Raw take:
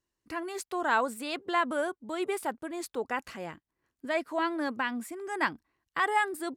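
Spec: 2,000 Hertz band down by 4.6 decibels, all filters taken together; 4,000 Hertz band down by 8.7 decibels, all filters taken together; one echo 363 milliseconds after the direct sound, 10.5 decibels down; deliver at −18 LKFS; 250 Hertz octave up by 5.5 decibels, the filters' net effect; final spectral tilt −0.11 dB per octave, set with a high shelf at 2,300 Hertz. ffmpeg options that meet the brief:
ffmpeg -i in.wav -af "equalizer=frequency=250:width_type=o:gain=7.5,equalizer=frequency=2000:width_type=o:gain=-3,highshelf=frequency=2300:gain=-3.5,equalizer=frequency=4000:width_type=o:gain=-7.5,aecho=1:1:363:0.299,volume=13dB" out.wav

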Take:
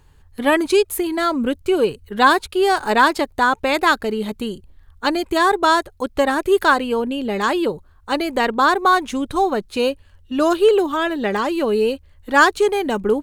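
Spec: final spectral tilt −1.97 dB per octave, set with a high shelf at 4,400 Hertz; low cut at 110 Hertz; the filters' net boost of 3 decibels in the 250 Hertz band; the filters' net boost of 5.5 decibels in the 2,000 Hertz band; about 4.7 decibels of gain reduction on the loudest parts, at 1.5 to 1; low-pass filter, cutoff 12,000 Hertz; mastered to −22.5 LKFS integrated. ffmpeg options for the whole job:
ffmpeg -i in.wav -af "highpass=110,lowpass=12000,equalizer=frequency=250:width_type=o:gain=4,equalizer=frequency=2000:width_type=o:gain=9,highshelf=frequency=4400:gain=-8.5,acompressor=threshold=-18dB:ratio=1.5,volume=-3.5dB" out.wav

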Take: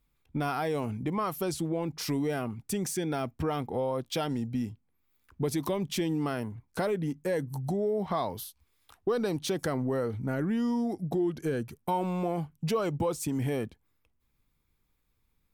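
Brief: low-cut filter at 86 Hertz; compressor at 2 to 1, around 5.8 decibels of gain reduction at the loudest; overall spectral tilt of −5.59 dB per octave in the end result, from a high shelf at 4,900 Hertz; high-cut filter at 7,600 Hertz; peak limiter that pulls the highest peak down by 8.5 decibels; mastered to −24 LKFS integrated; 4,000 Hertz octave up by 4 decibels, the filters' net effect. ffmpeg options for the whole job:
ffmpeg -i in.wav -af "highpass=86,lowpass=7600,equalizer=frequency=4000:width_type=o:gain=8,highshelf=frequency=4900:gain=-5.5,acompressor=threshold=-35dB:ratio=2,volume=14.5dB,alimiter=limit=-14.5dB:level=0:latency=1" out.wav

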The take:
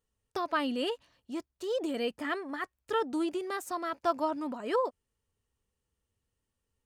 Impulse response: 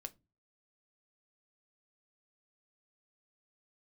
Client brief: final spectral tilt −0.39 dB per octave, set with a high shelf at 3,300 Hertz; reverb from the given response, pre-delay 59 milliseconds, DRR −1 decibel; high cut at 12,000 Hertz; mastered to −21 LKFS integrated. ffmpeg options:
-filter_complex "[0:a]lowpass=12000,highshelf=frequency=3300:gain=6.5,asplit=2[link_01][link_02];[1:a]atrim=start_sample=2205,adelay=59[link_03];[link_02][link_03]afir=irnorm=-1:irlink=0,volume=5.5dB[link_04];[link_01][link_04]amix=inputs=2:normalize=0,volume=8.5dB"

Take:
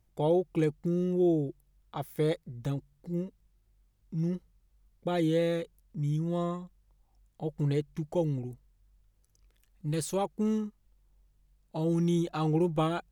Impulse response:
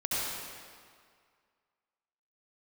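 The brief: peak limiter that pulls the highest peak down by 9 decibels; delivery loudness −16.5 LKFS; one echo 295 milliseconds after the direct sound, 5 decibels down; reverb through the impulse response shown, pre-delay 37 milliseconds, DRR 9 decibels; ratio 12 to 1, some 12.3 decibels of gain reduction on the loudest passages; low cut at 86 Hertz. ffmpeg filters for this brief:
-filter_complex "[0:a]highpass=86,acompressor=threshold=-35dB:ratio=12,alimiter=level_in=9dB:limit=-24dB:level=0:latency=1,volume=-9dB,aecho=1:1:295:0.562,asplit=2[link_01][link_02];[1:a]atrim=start_sample=2205,adelay=37[link_03];[link_02][link_03]afir=irnorm=-1:irlink=0,volume=-17.5dB[link_04];[link_01][link_04]amix=inputs=2:normalize=0,volume=24.5dB"

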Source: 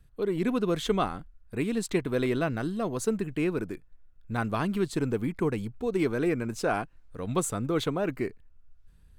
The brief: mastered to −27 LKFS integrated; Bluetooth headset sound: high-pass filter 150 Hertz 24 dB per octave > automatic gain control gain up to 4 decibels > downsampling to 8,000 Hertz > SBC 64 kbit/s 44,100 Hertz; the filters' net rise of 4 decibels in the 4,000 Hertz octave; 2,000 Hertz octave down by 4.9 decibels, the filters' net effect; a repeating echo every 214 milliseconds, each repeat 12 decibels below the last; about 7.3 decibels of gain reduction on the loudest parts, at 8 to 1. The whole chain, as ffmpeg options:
ffmpeg -i in.wav -af "equalizer=frequency=2000:width_type=o:gain=-9,equalizer=frequency=4000:width_type=o:gain=7.5,acompressor=threshold=-29dB:ratio=8,highpass=frequency=150:width=0.5412,highpass=frequency=150:width=1.3066,aecho=1:1:214|428|642:0.251|0.0628|0.0157,dynaudnorm=maxgain=4dB,aresample=8000,aresample=44100,volume=8.5dB" -ar 44100 -c:a sbc -b:a 64k out.sbc

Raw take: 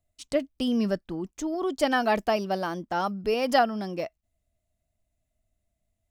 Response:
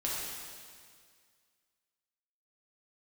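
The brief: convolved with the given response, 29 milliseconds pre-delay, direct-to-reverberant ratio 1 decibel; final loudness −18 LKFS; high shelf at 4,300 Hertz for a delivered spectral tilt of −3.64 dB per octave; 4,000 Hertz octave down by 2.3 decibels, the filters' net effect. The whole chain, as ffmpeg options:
-filter_complex "[0:a]equalizer=frequency=4000:width_type=o:gain=-7.5,highshelf=frequency=4300:gain=6.5,asplit=2[link_01][link_02];[1:a]atrim=start_sample=2205,adelay=29[link_03];[link_02][link_03]afir=irnorm=-1:irlink=0,volume=-6.5dB[link_04];[link_01][link_04]amix=inputs=2:normalize=0,volume=7dB"

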